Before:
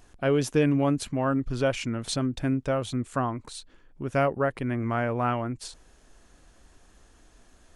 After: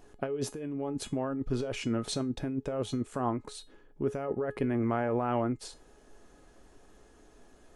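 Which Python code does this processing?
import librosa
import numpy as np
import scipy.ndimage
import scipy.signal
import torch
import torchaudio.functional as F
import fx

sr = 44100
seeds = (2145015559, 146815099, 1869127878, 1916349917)

y = fx.peak_eq(x, sr, hz=400.0, db=9.5, octaves=2.7)
y = fx.over_compress(y, sr, threshold_db=-22.0, ratio=-1.0)
y = fx.comb_fb(y, sr, f0_hz=420.0, decay_s=0.23, harmonics='all', damping=0.0, mix_pct=70)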